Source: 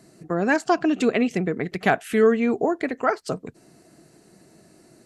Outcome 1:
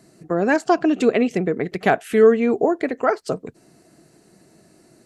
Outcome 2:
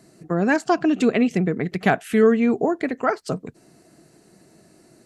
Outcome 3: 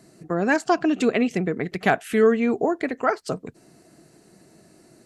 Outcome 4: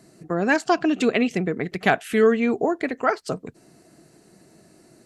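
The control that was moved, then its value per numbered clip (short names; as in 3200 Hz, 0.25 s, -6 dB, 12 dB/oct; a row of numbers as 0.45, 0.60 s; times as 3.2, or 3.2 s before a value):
dynamic EQ, frequency: 470, 170, 8700, 3400 Hz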